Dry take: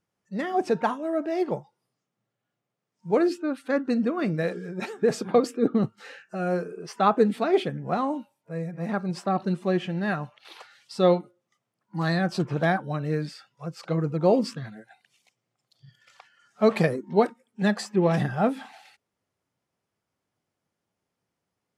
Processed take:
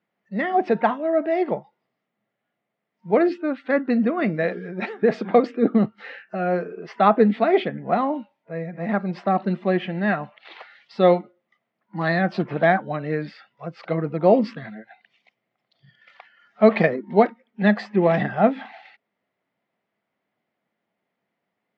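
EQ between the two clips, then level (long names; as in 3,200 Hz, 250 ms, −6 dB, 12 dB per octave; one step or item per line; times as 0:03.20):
loudspeaker in its box 190–3,800 Hz, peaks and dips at 210 Hz +6 dB, 670 Hz +6 dB, 2,000 Hz +8 dB
+2.5 dB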